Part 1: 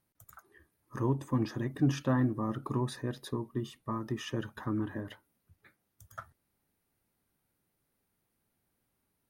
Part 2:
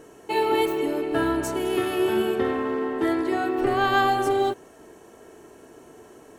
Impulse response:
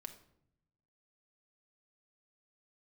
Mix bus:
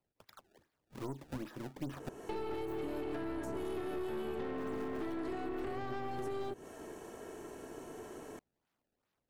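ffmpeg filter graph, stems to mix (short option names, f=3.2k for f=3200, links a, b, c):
-filter_complex "[0:a]highpass=f=310:p=1,acrusher=samples=24:mix=1:aa=0.000001:lfo=1:lforange=38.4:lforate=2.5,volume=-2dB,asplit=3[a][b][c];[a]atrim=end=2.09,asetpts=PTS-STARTPTS,afade=t=out:st=2.086:d=0.004:c=hsin[d];[b]atrim=start=2.09:end=4.51,asetpts=PTS-STARTPTS,volume=0[e];[c]atrim=start=4.51,asetpts=PTS-STARTPTS,afade=t=in:d=0.004:c=hsin[f];[d][e][f]concat=n=3:v=0:a=1[g];[1:a]acrossover=split=230|1500[h][i][j];[h]acompressor=threshold=-42dB:ratio=4[k];[i]acompressor=threshold=-31dB:ratio=4[l];[j]acompressor=threshold=-45dB:ratio=4[m];[k][l][m]amix=inputs=3:normalize=0,adelay=2000,volume=2.5dB[n];[g][n]amix=inputs=2:normalize=0,aeval=exprs='(tanh(28.2*val(0)+0.55)-tanh(0.55))/28.2':c=same,acrossover=split=550|1500[o][p][q];[o]acompressor=threshold=-37dB:ratio=4[r];[p]acompressor=threshold=-49dB:ratio=4[s];[q]acompressor=threshold=-56dB:ratio=4[t];[r][s][t]amix=inputs=3:normalize=0"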